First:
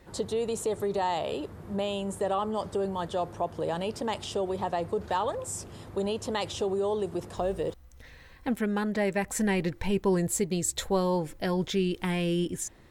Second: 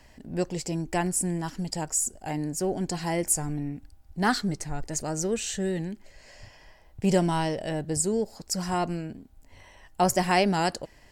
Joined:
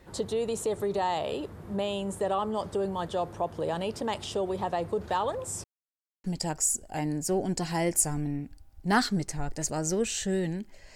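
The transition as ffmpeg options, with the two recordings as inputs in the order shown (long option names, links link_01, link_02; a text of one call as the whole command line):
ffmpeg -i cue0.wav -i cue1.wav -filter_complex "[0:a]apad=whole_dur=10.95,atrim=end=10.95,asplit=2[link_01][link_02];[link_01]atrim=end=5.64,asetpts=PTS-STARTPTS,afade=type=out:start_time=5.636:duration=0.004:curve=hsin[link_03];[link_02]atrim=start=5.64:end=6.24,asetpts=PTS-STARTPTS,volume=0[link_04];[1:a]atrim=start=1.56:end=6.27,asetpts=PTS-STARTPTS,afade=type=in:duration=0.004:curve=hsin[link_05];[link_03][link_04][link_05]concat=n=3:v=0:a=1" out.wav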